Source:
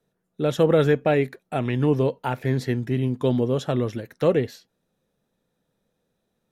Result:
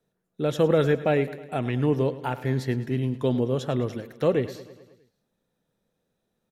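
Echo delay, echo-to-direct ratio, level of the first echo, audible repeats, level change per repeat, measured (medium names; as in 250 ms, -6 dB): 106 ms, -14.0 dB, -16.0 dB, 5, -4.5 dB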